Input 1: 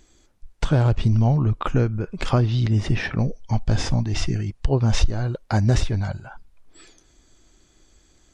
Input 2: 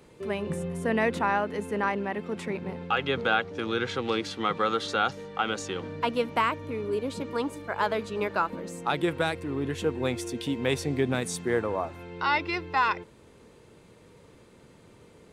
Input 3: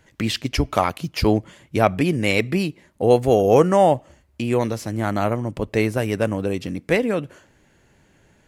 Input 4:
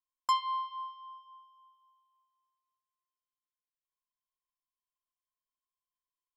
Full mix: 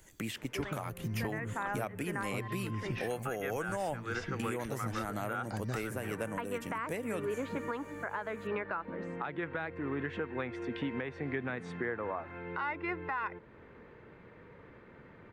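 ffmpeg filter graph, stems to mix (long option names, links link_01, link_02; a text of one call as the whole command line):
ffmpeg -i stem1.wav -i stem2.wav -i stem3.wav -i stem4.wav -filter_complex "[0:a]volume=-10dB,asplit=2[link_01][link_02];[1:a]lowpass=frequency=1800:width_type=q:width=2.4,adelay=350,volume=-1dB[link_03];[2:a]aexciter=amount=4.1:drive=7.7:freq=6500,volume=-7dB[link_04];[3:a]adelay=1950,volume=-6dB[link_05];[link_02]apad=whole_len=691410[link_06];[link_03][link_06]sidechaincompress=threshold=-34dB:ratio=8:attack=16:release=422[link_07];[link_01][link_07][link_04][link_05]amix=inputs=4:normalize=0,acrossover=split=98|1100|2900[link_08][link_09][link_10][link_11];[link_08]acompressor=threshold=-58dB:ratio=4[link_12];[link_09]acompressor=threshold=-33dB:ratio=4[link_13];[link_10]acompressor=threshold=-38dB:ratio=4[link_14];[link_11]acompressor=threshold=-50dB:ratio=4[link_15];[link_12][link_13][link_14][link_15]amix=inputs=4:normalize=0,alimiter=level_in=0.5dB:limit=-24dB:level=0:latency=1:release=356,volume=-0.5dB" out.wav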